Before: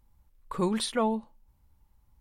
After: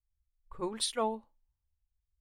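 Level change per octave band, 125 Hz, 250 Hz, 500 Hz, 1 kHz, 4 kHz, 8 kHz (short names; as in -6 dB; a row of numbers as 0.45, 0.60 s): -15.0, -11.0, -5.0, -4.0, -1.0, +0.5 dB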